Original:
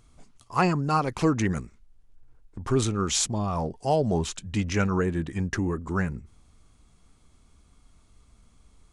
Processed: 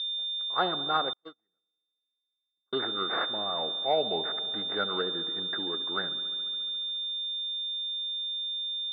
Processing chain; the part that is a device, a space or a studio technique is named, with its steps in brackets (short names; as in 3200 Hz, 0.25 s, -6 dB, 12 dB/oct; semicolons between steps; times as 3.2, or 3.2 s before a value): toy sound module (decimation joined by straight lines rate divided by 8×; pulse-width modulation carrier 3600 Hz; speaker cabinet 560–4200 Hz, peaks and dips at 990 Hz -9 dB, 1400 Hz +5 dB, 2400 Hz -8 dB, 3800 Hz +4 dB); dark delay 70 ms, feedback 82%, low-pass 1400 Hz, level -16 dB; 1.13–2.73 gate -24 dBFS, range -51 dB; gain +1 dB